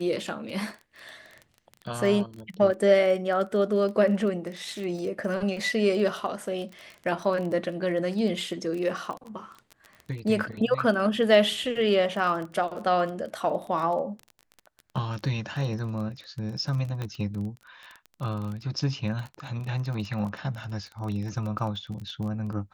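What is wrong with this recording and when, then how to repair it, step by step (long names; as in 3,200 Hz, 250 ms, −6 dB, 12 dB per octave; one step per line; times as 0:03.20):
surface crackle 23 per second −33 dBFS
0:17.02: click −20 dBFS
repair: click removal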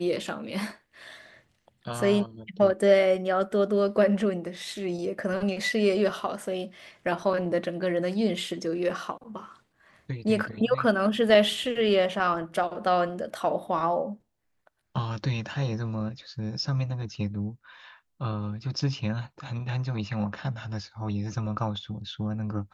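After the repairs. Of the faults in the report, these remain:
none of them is left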